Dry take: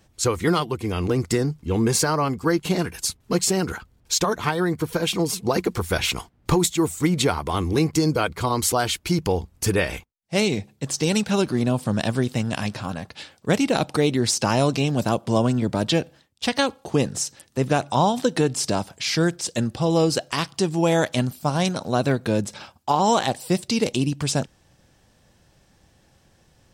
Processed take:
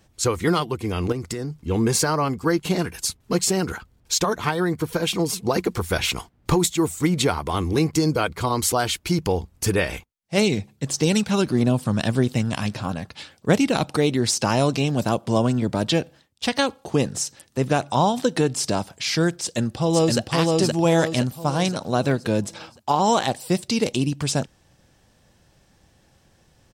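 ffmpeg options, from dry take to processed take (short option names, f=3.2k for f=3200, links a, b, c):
-filter_complex "[0:a]asettb=1/sr,asplit=3[a][b][c];[a]atrim=end=1.124[d];[b]atrim=start=1.12:end=1.67,asetpts=PTS-STARTPTS,afade=t=in:d=0.004:c=qsin,afade=t=out:st=0.546:d=0.004:c=qsin,acompressor=threshold=-25dB:ratio=6:attack=3.2:release=140:knee=1:detection=peak[e];[c]atrim=start=1.666[f];[d][e]acrossfade=d=0.004:c1=hsin:c2=qsin[g];[g][f]acrossfade=d=0.004:c1=qsin:c2=hsin,asettb=1/sr,asplit=3[h][i][j];[h]atrim=end=10.374[k];[i]atrim=start=10.37:end=13.91,asetpts=PTS-STARTPTS,afade=t=in:d=0.004:c=qsin,afade=t=out:st=3.536:d=0.004:c=qsin,aphaser=in_gain=1:out_gain=1:delay=1:decay=0.27:speed=1.6:type=triangular[l];[j]atrim=start=13.906[m];[k][l]acrossfade=d=0.004:c1=hsin:c2=qsin[n];[n][m]acrossfade=d=0.004:c1=qsin:c2=hsin,asplit=2[o][p];[p]afade=t=in:st=19.41:d=0.01,afade=t=out:st=20.19:d=0.01,aecho=0:1:520|1040|1560|2080|2600|3120:0.794328|0.357448|0.160851|0.0723832|0.0325724|0.0146576[q];[o][q]amix=inputs=2:normalize=0"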